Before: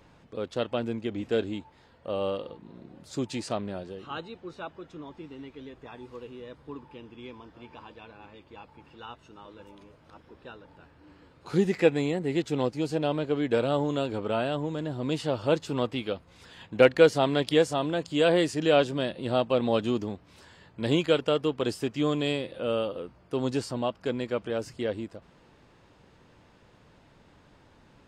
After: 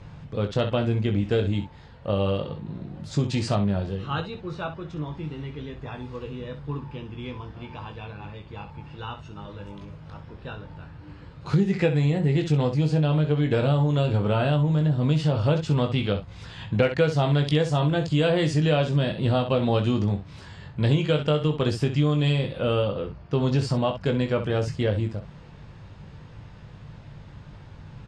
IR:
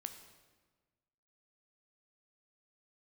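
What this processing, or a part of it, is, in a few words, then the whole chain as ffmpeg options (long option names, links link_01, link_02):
jukebox: -filter_complex "[0:a]asettb=1/sr,asplit=3[link_01][link_02][link_03];[link_01]atrim=end=22.824[link_04];[link_02]atrim=start=22.82:end=23.59,asetpts=PTS-STARTPTS,afade=type=in:duration=0.004:curve=qsin,afade=type=out:start_time=0.766:duration=0.004:curve=qsin,lowpass=frequency=6700:width=0.5412,lowpass=frequency=6700:width=1.3066[link_05];[link_03]atrim=start=23.586[link_06];[link_04][link_05]acrossfade=duration=0.004:curve1=hsin:curve2=qsin[link_07];[link_07][link_06]acrossfade=duration=0.004:curve1=qsin:curve2=hsin,lowpass=6400,lowshelf=frequency=200:width_type=q:width=1.5:gain=9.5,aecho=1:1:20|64:0.501|0.282,acompressor=threshold=-25dB:ratio=4,volume=6dB"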